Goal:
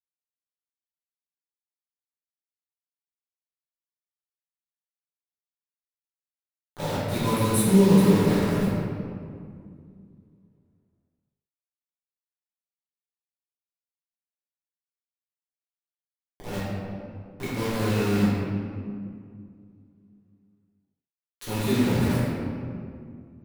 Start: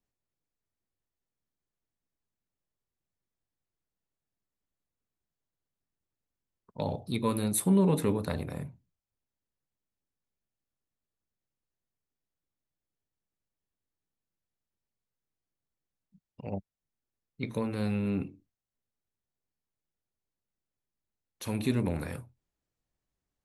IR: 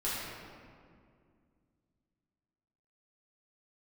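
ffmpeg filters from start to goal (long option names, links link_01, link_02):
-filter_complex "[0:a]acrusher=bits=5:mix=0:aa=0.000001[link_01];[1:a]atrim=start_sample=2205[link_02];[link_01][link_02]afir=irnorm=-1:irlink=0"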